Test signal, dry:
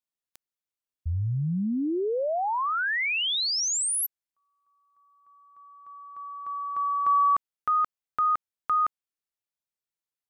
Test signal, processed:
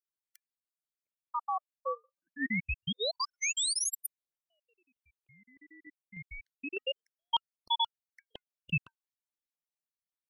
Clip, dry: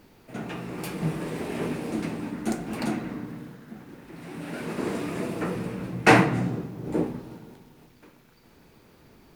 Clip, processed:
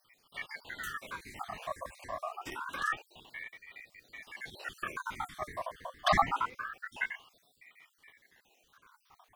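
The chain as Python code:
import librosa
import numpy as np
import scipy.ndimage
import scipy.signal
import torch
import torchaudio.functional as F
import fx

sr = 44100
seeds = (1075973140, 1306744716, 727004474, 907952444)

y = fx.spec_dropout(x, sr, seeds[0], share_pct=66)
y = scipy.signal.sosfilt(scipy.signal.cheby1(5, 1.0, [320.0, 760.0], 'bandstop', fs=sr, output='sos'), y)
y = fx.ring_lfo(y, sr, carrier_hz=1500.0, swing_pct=45, hz=0.26)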